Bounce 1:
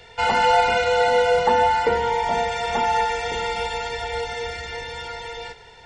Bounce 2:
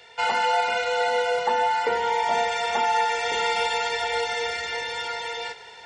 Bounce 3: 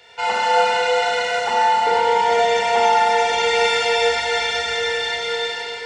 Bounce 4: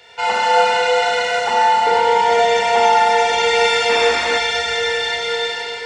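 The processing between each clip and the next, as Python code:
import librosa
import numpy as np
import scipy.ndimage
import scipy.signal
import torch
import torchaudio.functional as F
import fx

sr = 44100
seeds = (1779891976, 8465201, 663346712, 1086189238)

y1 = fx.highpass(x, sr, hz=590.0, slope=6)
y1 = fx.rider(y1, sr, range_db=4, speed_s=0.5)
y2 = y1 + 10.0 ** (-10.5 / 20.0) * np.pad(y1, (int(282 * sr / 1000.0), 0))[:len(y1)]
y2 = fx.rev_schroeder(y2, sr, rt60_s=2.9, comb_ms=30, drr_db=-4.5)
y3 = fx.spec_paint(y2, sr, seeds[0], shape='noise', start_s=3.89, length_s=0.49, low_hz=200.0, high_hz=2700.0, level_db=-29.0)
y3 = y3 * librosa.db_to_amplitude(2.5)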